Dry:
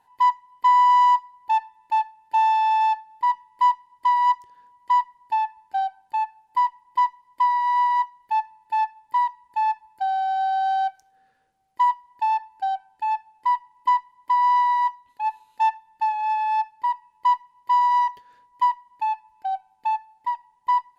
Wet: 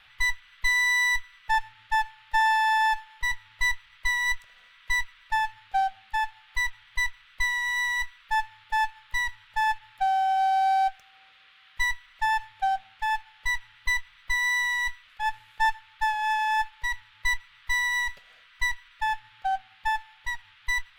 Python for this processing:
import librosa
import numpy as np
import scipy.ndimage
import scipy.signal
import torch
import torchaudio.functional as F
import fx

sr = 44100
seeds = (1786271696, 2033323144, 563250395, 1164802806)

y = fx.lower_of_two(x, sr, delay_ms=1.5)
y = fx.dmg_noise_band(y, sr, seeds[0], low_hz=1200.0, high_hz=3600.0, level_db=-57.0)